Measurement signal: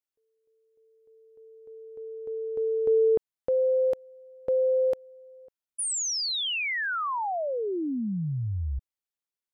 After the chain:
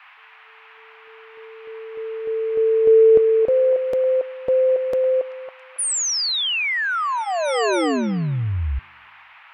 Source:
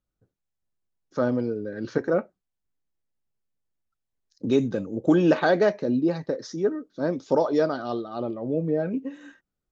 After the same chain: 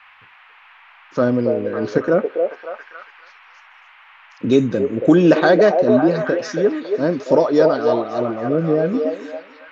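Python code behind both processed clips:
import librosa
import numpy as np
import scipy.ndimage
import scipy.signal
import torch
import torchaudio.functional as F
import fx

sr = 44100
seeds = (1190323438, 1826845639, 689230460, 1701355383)

y = fx.notch(x, sr, hz=840.0, q=13.0)
y = fx.dmg_noise_band(y, sr, seeds[0], low_hz=850.0, high_hz=2700.0, level_db=-55.0)
y = fx.echo_stepped(y, sr, ms=277, hz=570.0, octaves=0.7, feedback_pct=70, wet_db=-2.0)
y = y * 10.0 ** (7.0 / 20.0)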